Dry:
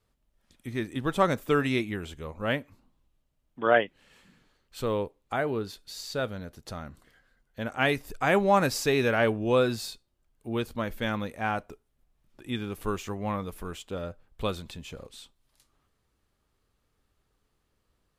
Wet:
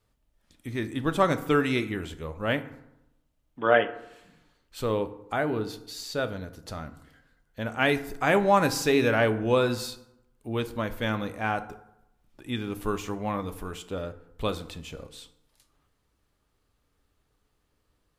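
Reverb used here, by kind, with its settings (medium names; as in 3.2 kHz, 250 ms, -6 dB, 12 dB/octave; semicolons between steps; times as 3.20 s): FDN reverb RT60 0.85 s, low-frequency decay 1.1×, high-frequency decay 0.55×, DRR 10 dB; trim +1 dB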